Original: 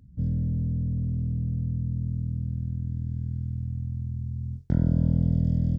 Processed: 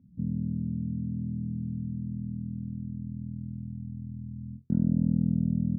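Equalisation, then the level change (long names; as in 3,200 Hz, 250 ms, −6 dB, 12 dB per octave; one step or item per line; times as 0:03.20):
resonant band-pass 220 Hz, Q 2.7
+3.5 dB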